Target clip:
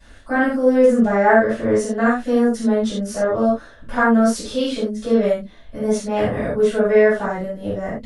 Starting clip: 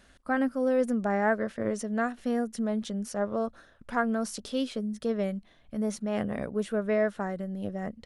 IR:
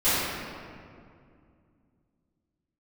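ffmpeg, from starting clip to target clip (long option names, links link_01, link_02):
-filter_complex "[1:a]atrim=start_sample=2205,afade=type=out:start_time=0.23:duration=0.01,atrim=end_sample=10584,asetrate=74970,aresample=44100[link_01];[0:a][link_01]afir=irnorm=-1:irlink=0"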